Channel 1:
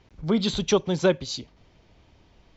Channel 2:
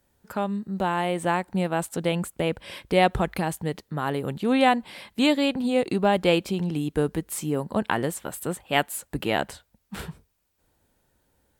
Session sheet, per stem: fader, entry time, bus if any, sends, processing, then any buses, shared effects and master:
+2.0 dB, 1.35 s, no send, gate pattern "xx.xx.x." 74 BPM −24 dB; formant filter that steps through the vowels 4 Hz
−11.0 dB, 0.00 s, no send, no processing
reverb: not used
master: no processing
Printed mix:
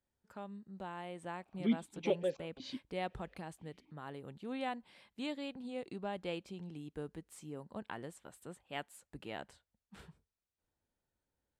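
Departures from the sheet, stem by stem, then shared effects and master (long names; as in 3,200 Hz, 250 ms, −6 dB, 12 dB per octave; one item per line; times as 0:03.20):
stem 2 −11.0 dB → −19.5 dB
master: extra low-pass filter 8,800 Hz 12 dB per octave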